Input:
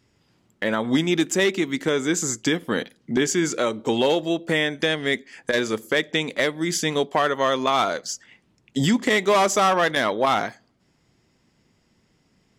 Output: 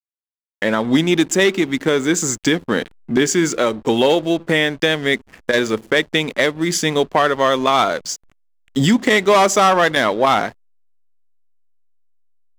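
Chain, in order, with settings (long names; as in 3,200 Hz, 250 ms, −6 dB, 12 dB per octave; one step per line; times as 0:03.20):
slack as between gear wheels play −35 dBFS
level +5.5 dB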